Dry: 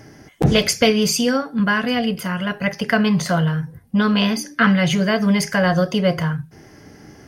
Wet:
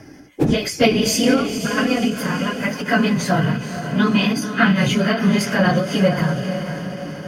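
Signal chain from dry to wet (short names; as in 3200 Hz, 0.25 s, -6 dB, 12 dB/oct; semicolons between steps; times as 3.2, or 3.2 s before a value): phase scrambler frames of 50 ms; 1.58–2.05 negative-ratio compressor -21 dBFS, ratio -0.5; small resonant body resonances 290/2500 Hz, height 12 dB, ringing for 95 ms; on a send: diffused feedback echo 0.497 s, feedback 56%, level -9 dB; on the sum: ending taper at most 110 dB/s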